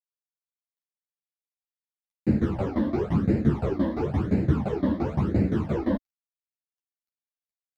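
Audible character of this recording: a quantiser's noise floor 12-bit, dither none; phasing stages 12, 0.97 Hz, lowest notch 130–1100 Hz; tremolo saw down 5.8 Hz, depth 90%; a shimmering, thickened sound

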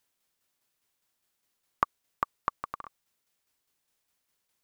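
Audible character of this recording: tremolo saw down 4.9 Hz, depth 45%

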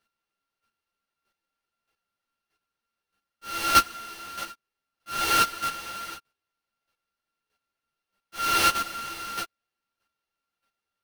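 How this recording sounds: a buzz of ramps at a fixed pitch in blocks of 32 samples; chopped level 1.6 Hz, depth 65%, duty 10%; aliases and images of a low sample rate 7400 Hz, jitter 20%; a shimmering, thickened sound

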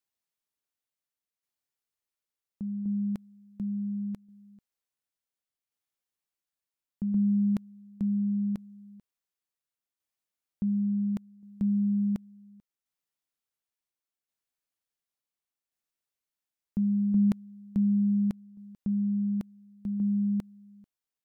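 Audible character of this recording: tremolo saw down 0.7 Hz, depth 45%

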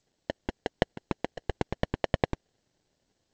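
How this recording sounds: a quantiser's noise floor 12-bit, dither none; phasing stages 6, 2.9 Hz, lowest notch 700–4600 Hz; aliases and images of a low sample rate 1200 Hz, jitter 0%; G.722

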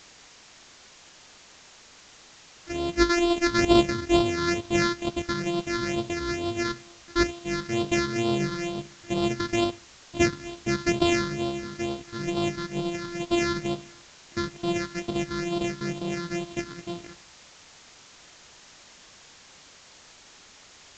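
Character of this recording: a buzz of ramps at a fixed pitch in blocks of 128 samples; phasing stages 6, 2.2 Hz, lowest notch 690–1800 Hz; a quantiser's noise floor 8-bit, dither triangular; A-law

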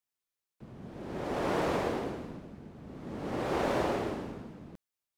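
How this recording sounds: noise floor -90 dBFS; spectral tilt -5.0 dB/oct

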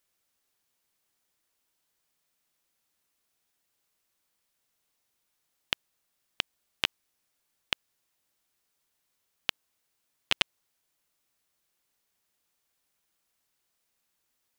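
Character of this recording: noise floor -79 dBFS; spectral tilt -2.5 dB/oct

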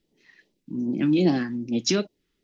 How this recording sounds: phasing stages 2, 2.5 Hz, lowest notch 600–1400 Hz

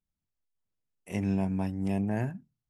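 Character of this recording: noise floor -88 dBFS; spectral tilt -7.5 dB/oct

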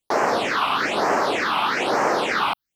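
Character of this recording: phasing stages 6, 1.1 Hz, lowest notch 470–3500 Hz

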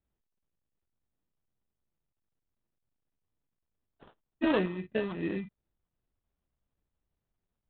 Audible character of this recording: phasing stages 6, 2.7 Hz, lowest notch 450–2300 Hz; aliases and images of a low sample rate 2200 Hz, jitter 0%; IMA ADPCM

